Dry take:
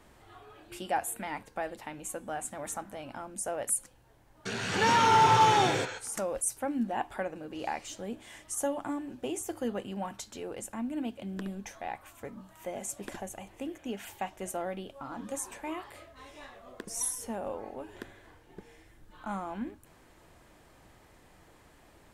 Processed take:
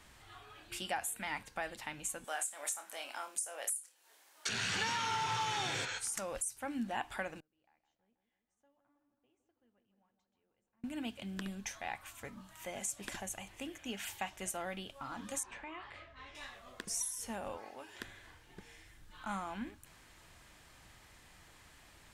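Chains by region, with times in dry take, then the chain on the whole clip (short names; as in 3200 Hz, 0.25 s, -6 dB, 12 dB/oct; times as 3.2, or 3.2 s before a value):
2.24–4.49 HPF 360 Hz 24 dB/oct + high shelf 4800 Hz +9 dB + flutter echo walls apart 4.7 m, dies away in 0.2 s
7.4–10.84 tape spacing loss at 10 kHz 26 dB + dark delay 0.161 s, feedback 66%, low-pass 1700 Hz, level -8.5 dB + flipped gate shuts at -41 dBFS, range -35 dB
15.43–16.35 LPF 2800 Hz + compressor 3:1, threshold -40 dBFS
17.57–18 HPF 400 Hz 6 dB/oct + bell 5200 Hz +5.5 dB 0.33 oct
whole clip: passive tone stack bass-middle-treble 5-5-5; compressor 16:1, threshold -44 dBFS; high shelf 10000 Hz -8 dB; gain +12.5 dB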